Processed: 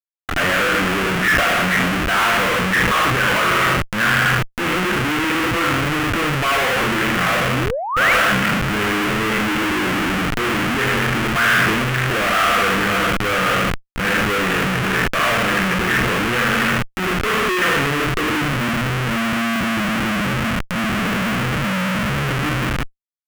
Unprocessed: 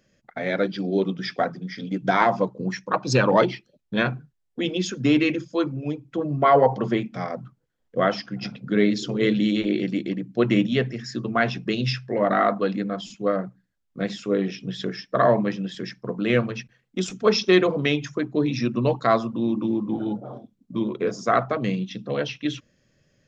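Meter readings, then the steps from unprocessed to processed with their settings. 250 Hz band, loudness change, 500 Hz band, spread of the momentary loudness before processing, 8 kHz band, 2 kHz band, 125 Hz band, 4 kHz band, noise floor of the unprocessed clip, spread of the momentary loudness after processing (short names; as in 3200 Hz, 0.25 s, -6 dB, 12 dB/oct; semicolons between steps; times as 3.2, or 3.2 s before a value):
+2.0 dB, +6.5 dB, 0.0 dB, 12 LU, n/a, +14.5 dB, +6.5 dB, +10.5 dB, -72 dBFS, 5 LU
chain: spectral trails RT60 0.57 s; low-pass sweep 1700 Hz -> 200 Hz, 17.81–18.45; high shelf 2800 Hz -9.5 dB; feedback echo 78 ms, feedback 38%, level -8 dB; AGC gain up to 5.5 dB; doubler 22 ms -12 dB; reverse; compressor 16:1, threshold -25 dBFS, peak gain reduction 18.5 dB; reverse; Schmitt trigger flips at -40 dBFS; painted sound rise, 7.49–8.13, 200–2400 Hz -34 dBFS; band shelf 1900 Hz +10 dB; transient shaper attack -4 dB, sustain +7 dB; gain +8 dB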